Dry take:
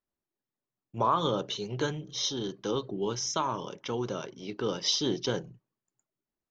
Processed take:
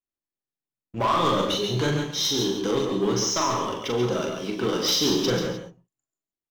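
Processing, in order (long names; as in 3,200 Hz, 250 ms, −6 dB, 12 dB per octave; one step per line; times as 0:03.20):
notch filter 910 Hz, Q 17
leveller curve on the samples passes 3
flanger 0.84 Hz, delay 2.4 ms, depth 3.7 ms, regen −59%
multi-tap delay 41/138 ms −4.5/−7 dB
reverb whose tail is shaped and stops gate 190 ms rising, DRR 6.5 dB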